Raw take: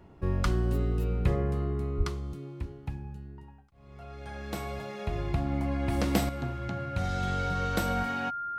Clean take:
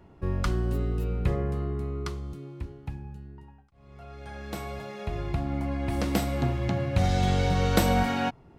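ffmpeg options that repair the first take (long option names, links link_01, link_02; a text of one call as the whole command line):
ffmpeg -i in.wav -filter_complex "[0:a]bandreject=frequency=1400:width=30,asplit=3[link_01][link_02][link_03];[link_01]afade=type=out:start_time=1.97:duration=0.02[link_04];[link_02]highpass=frequency=140:width=0.5412,highpass=frequency=140:width=1.3066,afade=type=in:start_time=1.97:duration=0.02,afade=type=out:start_time=2.09:duration=0.02[link_05];[link_03]afade=type=in:start_time=2.09:duration=0.02[link_06];[link_04][link_05][link_06]amix=inputs=3:normalize=0,asetnsamples=nb_out_samples=441:pad=0,asendcmd='6.29 volume volume 7.5dB',volume=0dB" out.wav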